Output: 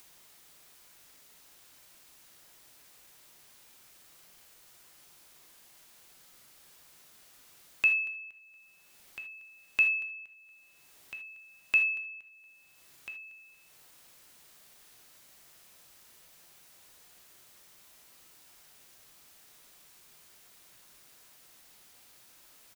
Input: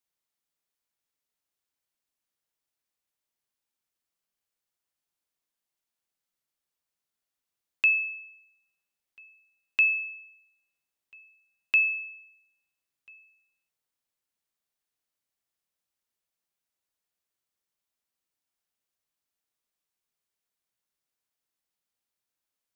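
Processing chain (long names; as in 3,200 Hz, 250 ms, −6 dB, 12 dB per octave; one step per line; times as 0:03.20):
upward compression, threshold −30 dBFS
repeating echo 234 ms, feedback 35%, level −21 dB
reverb whose tail is shaped and stops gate 100 ms flat, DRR 6 dB
level −3.5 dB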